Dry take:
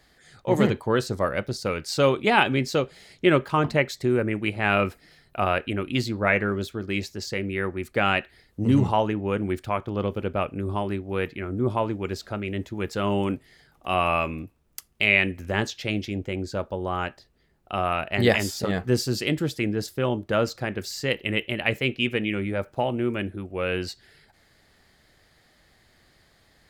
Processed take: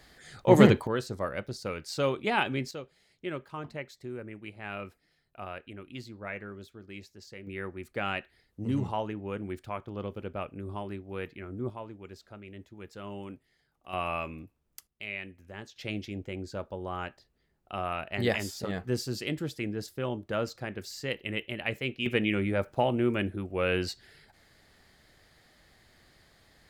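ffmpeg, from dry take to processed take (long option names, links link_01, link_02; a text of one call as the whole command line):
ffmpeg -i in.wav -af "asetnsamples=nb_out_samples=441:pad=0,asendcmd='0.87 volume volume -8dB;2.71 volume volume -17dB;7.47 volume volume -10dB;11.7 volume volume -16.5dB;13.93 volume volume -9.5dB;14.87 volume volume -18.5dB;15.76 volume volume -8dB;22.06 volume volume -1dB',volume=3dB" out.wav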